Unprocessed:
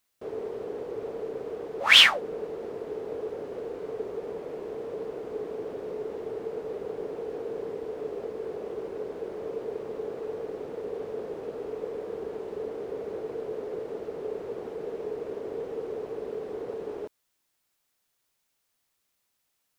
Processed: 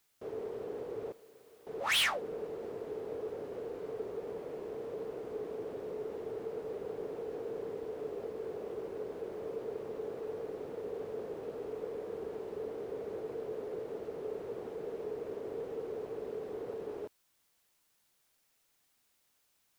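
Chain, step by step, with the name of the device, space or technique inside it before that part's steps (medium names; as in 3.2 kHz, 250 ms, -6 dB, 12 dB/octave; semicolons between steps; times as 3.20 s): open-reel tape (saturation -21 dBFS, distortion -5 dB; peaking EQ 110 Hz +3 dB; white noise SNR 35 dB); 1.12–1.67 s: pre-emphasis filter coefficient 0.9; trim -5 dB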